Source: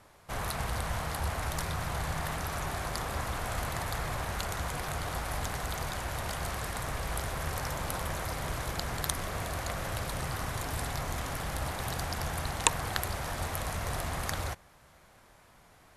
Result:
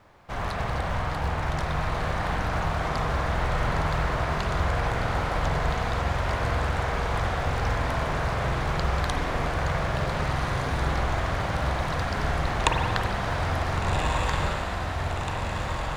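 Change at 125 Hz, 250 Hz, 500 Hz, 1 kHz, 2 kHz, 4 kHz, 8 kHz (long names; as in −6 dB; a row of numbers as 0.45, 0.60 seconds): +9.0, +8.5, +9.0, +8.5, +7.5, +3.5, −5.5 decibels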